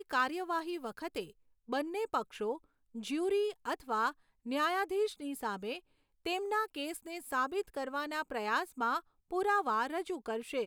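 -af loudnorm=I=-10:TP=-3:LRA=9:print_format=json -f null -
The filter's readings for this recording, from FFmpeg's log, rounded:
"input_i" : "-35.4",
"input_tp" : "-19.3",
"input_lra" : "2.4",
"input_thresh" : "-45.5",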